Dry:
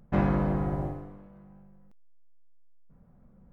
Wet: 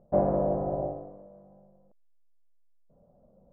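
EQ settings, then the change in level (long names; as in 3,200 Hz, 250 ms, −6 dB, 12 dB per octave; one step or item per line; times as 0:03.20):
low-pass with resonance 610 Hz, resonance Q 4.9
high-frequency loss of the air 210 metres
low-shelf EQ 310 Hz −10 dB
+1.0 dB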